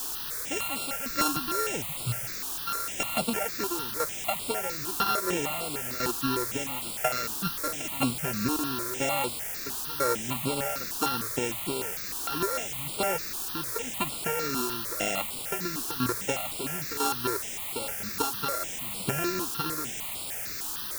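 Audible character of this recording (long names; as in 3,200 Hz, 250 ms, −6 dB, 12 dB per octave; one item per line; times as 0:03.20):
a buzz of ramps at a fixed pitch in blocks of 32 samples
tremolo saw down 1 Hz, depth 80%
a quantiser's noise floor 6 bits, dither triangular
notches that jump at a steady rate 6.6 Hz 560–6,100 Hz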